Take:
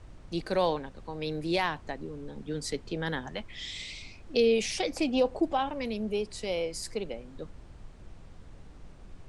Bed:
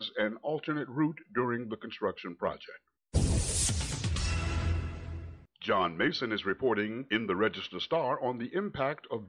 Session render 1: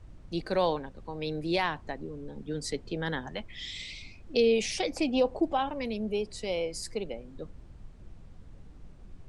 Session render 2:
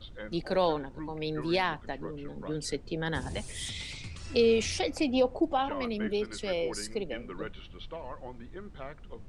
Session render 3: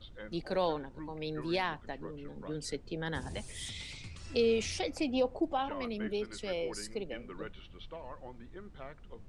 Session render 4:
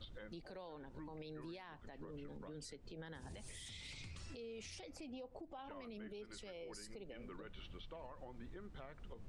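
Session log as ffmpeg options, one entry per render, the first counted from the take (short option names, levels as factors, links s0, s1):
-af "afftdn=nr=6:nf=-50"
-filter_complex "[1:a]volume=0.251[s0];[0:a][s0]amix=inputs=2:normalize=0"
-af "volume=0.596"
-af "acompressor=threshold=0.00891:ratio=10,alimiter=level_in=8.41:limit=0.0631:level=0:latency=1:release=116,volume=0.119"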